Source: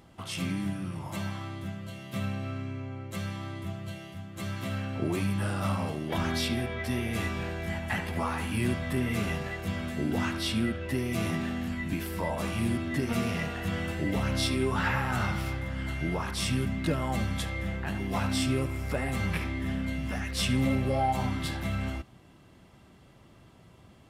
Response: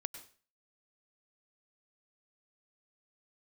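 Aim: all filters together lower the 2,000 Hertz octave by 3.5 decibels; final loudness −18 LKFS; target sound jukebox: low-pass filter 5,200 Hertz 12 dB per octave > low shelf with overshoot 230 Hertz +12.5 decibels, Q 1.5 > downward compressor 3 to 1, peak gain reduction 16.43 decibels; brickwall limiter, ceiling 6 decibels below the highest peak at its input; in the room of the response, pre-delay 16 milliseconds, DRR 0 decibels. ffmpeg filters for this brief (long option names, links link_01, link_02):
-filter_complex "[0:a]equalizer=frequency=2000:width_type=o:gain=-4,alimiter=limit=-23.5dB:level=0:latency=1,asplit=2[link_01][link_02];[1:a]atrim=start_sample=2205,adelay=16[link_03];[link_02][link_03]afir=irnorm=-1:irlink=0,volume=1.5dB[link_04];[link_01][link_04]amix=inputs=2:normalize=0,lowpass=5200,lowshelf=frequency=230:width_type=q:width=1.5:gain=12.5,acompressor=threshold=-33dB:ratio=3,volume=15dB"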